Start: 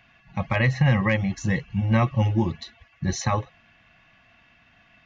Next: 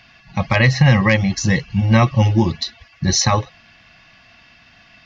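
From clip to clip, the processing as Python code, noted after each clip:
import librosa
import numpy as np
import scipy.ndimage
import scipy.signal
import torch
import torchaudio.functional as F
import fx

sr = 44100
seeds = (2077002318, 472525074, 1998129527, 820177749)

y = fx.peak_eq(x, sr, hz=4900.0, db=13.5, octaves=0.7)
y = y * librosa.db_to_amplitude(7.0)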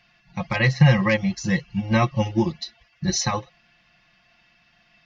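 y = x + 0.65 * np.pad(x, (int(5.7 * sr / 1000.0), 0))[:len(x)]
y = fx.upward_expand(y, sr, threshold_db=-23.0, expansion=1.5)
y = y * librosa.db_to_amplitude(-4.0)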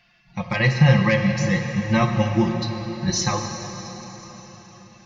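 y = fx.rev_plate(x, sr, seeds[0], rt60_s=4.7, hf_ratio=0.9, predelay_ms=0, drr_db=4.0)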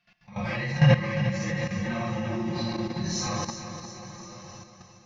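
y = fx.phase_scramble(x, sr, seeds[1], window_ms=200)
y = fx.level_steps(y, sr, step_db=15)
y = fx.echo_feedback(y, sr, ms=353, feedback_pct=50, wet_db=-10.0)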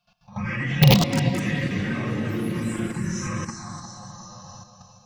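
y = (np.mod(10.0 ** (9.5 / 20.0) * x + 1.0, 2.0) - 1.0) / 10.0 ** (9.5 / 20.0)
y = fx.env_phaser(y, sr, low_hz=330.0, high_hz=1500.0, full_db=-20.5)
y = fx.echo_pitch(y, sr, ms=333, semitones=5, count=3, db_per_echo=-6.0)
y = y * librosa.db_to_amplitude(4.0)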